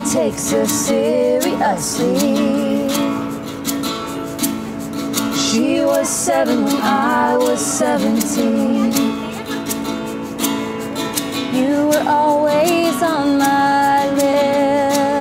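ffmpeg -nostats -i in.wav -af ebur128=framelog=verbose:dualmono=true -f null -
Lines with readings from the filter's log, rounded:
Integrated loudness:
  I:         -13.7 LUFS
  Threshold: -23.7 LUFS
Loudness range:
  LRA:         4.8 LU
  Threshold: -34.0 LUFS
  LRA low:   -16.5 LUFS
  LRA high:  -11.7 LUFS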